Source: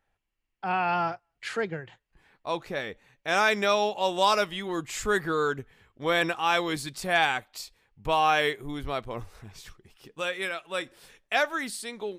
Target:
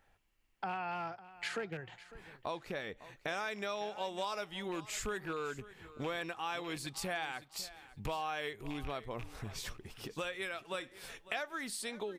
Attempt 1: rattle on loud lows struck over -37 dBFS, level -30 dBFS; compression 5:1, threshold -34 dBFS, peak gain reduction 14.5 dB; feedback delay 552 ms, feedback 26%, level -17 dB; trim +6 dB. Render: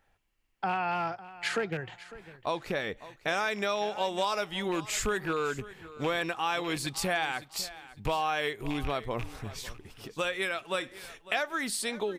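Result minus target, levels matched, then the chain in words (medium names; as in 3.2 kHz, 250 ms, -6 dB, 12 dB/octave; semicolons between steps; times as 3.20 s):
compression: peak gain reduction -8.5 dB
rattle on loud lows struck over -37 dBFS, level -30 dBFS; compression 5:1, threshold -44.5 dBFS, peak gain reduction 23 dB; feedback delay 552 ms, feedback 26%, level -17 dB; trim +6 dB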